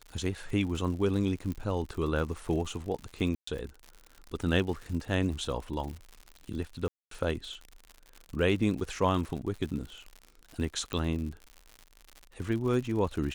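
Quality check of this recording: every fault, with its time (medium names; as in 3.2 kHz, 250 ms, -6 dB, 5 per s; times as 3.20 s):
crackle 93 per s -37 dBFS
1.52 s: pop -24 dBFS
3.35–3.47 s: dropout 124 ms
6.88–7.11 s: dropout 233 ms
10.93 s: pop -20 dBFS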